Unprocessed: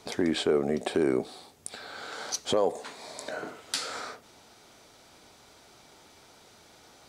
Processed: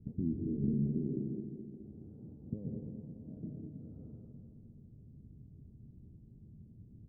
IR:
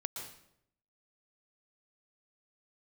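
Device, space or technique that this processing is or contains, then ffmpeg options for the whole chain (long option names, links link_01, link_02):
club heard from the street: -filter_complex "[0:a]asettb=1/sr,asplit=3[link_01][link_02][link_03];[link_01]atrim=end=0.734[link_04];[link_02]atrim=start=0.73:end=1.8,asetpts=PTS-STARTPTS,afade=type=in:duration=0.004:curve=qsin,afade=type=out:start_time=1.066:duration=0.004:curve=qsin,highpass=210[link_05];[link_03]atrim=start=1.796[link_06];[link_04][link_05]acrossfade=duration=0.004:curve1=hsin:curve2=qsin[link_07];[link_07][link_06]acrossfade=duration=0.004:curve1=qsin:curve2=hsin,alimiter=limit=-24dB:level=0:latency=1:release=36,lowpass=frequency=190:width=0.5412,lowpass=frequency=190:width=1.3066[link_08];[1:a]atrim=start_sample=2205[link_09];[link_08][link_09]afir=irnorm=-1:irlink=0,aecho=1:1:211|422|633|844|1055|1266|1477|1688:0.422|0.249|0.147|0.0866|0.0511|0.0301|0.0178|0.0105,volume=12.5dB"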